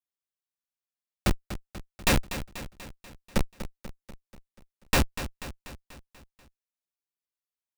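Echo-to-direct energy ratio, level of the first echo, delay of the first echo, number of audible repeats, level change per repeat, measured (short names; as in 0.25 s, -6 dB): -10.5 dB, -12.0 dB, 0.243 s, 5, -5.0 dB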